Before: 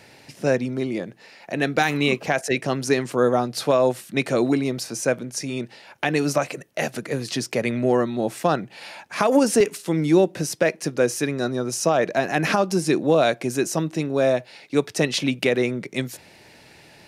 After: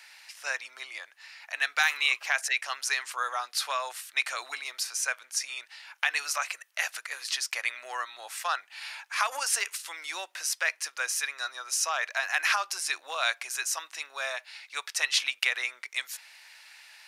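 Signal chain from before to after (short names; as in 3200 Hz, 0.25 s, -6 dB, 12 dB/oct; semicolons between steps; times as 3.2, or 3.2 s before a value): HPF 1100 Hz 24 dB/oct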